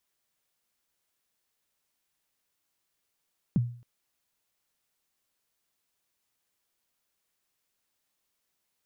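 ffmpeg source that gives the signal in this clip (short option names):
-f lavfi -i "aevalsrc='0.126*pow(10,-3*t/0.46)*sin(2*PI*(230*0.026/log(120/230)*(exp(log(120/230)*min(t,0.026)/0.026)-1)+120*max(t-0.026,0)))':d=0.27:s=44100"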